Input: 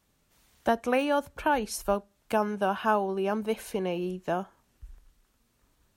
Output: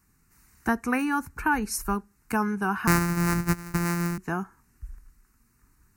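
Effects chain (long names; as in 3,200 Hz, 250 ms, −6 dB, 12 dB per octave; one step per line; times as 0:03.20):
0:02.87–0:04.18: samples sorted by size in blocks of 256 samples
parametric band 870 Hz −3 dB 1.1 octaves
phaser with its sweep stopped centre 1,400 Hz, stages 4
level +7 dB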